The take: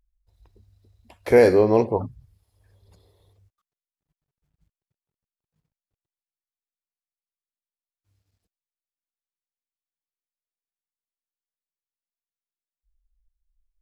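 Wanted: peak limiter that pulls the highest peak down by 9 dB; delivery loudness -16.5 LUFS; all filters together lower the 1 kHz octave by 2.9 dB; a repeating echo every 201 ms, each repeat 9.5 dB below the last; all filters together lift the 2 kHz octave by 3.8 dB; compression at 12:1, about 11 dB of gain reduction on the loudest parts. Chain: peaking EQ 1 kHz -5 dB; peaking EQ 2 kHz +6 dB; compression 12:1, threshold -21 dBFS; peak limiter -20 dBFS; feedback delay 201 ms, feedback 33%, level -9.5 dB; trim +14.5 dB

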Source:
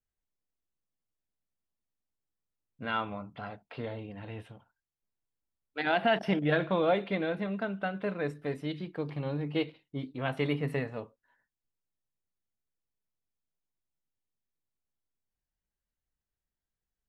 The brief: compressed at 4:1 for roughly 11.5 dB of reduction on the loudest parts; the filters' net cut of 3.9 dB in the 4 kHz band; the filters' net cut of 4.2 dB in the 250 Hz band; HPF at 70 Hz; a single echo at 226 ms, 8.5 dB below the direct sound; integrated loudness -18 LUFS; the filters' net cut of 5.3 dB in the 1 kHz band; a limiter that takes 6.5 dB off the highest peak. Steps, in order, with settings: high-pass 70 Hz; peaking EQ 250 Hz -5.5 dB; peaking EQ 1 kHz -8 dB; peaking EQ 4 kHz -5 dB; compression 4:1, threshold -40 dBFS; peak limiter -34 dBFS; delay 226 ms -8.5 dB; trim +27.5 dB

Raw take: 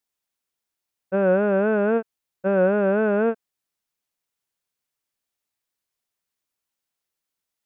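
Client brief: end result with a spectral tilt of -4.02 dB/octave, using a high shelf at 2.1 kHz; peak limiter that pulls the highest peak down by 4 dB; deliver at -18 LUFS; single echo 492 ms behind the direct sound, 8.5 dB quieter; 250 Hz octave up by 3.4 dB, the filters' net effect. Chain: peaking EQ 250 Hz +4.5 dB; treble shelf 2.1 kHz +4 dB; peak limiter -12.5 dBFS; delay 492 ms -8.5 dB; trim +3.5 dB

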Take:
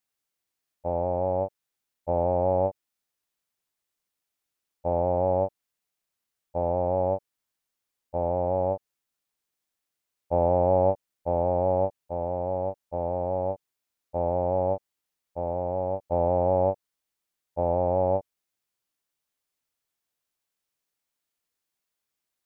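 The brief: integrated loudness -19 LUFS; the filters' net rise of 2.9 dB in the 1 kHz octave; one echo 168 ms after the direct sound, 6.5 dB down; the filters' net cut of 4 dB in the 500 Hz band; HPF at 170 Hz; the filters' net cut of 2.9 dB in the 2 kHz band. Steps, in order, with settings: high-pass 170 Hz; peaking EQ 500 Hz -7.5 dB; peaking EQ 1 kHz +9 dB; peaking EQ 2 kHz -7.5 dB; delay 168 ms -6.5 dB; trim +9.5 dB

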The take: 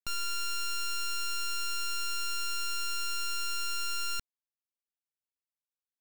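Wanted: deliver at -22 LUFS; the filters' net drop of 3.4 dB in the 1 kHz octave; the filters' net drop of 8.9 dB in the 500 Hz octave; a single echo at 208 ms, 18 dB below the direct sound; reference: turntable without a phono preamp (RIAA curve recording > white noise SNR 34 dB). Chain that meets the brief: RIAA curve recording; peaking EQ 500 Hz -6.5 dB; peaking EQ 1 kHz -7.5 dB; delay 208 ms -18 dB; white noise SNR 34 dB; trim +0.5 dB

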